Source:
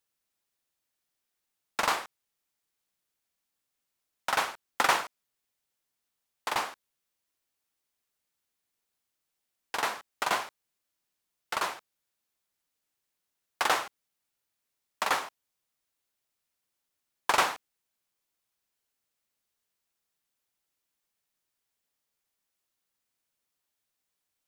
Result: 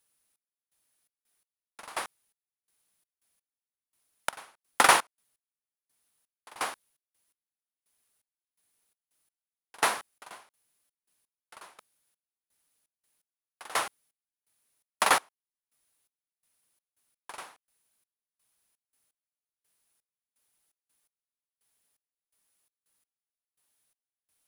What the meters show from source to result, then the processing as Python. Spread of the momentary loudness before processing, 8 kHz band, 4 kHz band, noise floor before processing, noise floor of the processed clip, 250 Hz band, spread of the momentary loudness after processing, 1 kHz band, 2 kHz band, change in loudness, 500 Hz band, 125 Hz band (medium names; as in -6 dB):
17 LU, +4.0 dB, -0.5 dB, -84 dBFS, under -85 dBFS, -0.5 dB, 24 LU, -0.5 dB, 0.0 dB, +2.5 dB, -0.5 dB, -1.0 dB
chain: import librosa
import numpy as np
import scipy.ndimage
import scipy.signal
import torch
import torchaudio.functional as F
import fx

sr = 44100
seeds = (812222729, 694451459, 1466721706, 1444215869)

y = fx.peak_eq(x, sr, hz=9900.0, db=14.0, octaves=0.21)
y = fx.step_gate(y, sr, bpm=84, pattern='xx..xx.x...', floor_db=-24.0, edge_ms=4.5)
y = y * 10.0 ** (4.5 / 20.0)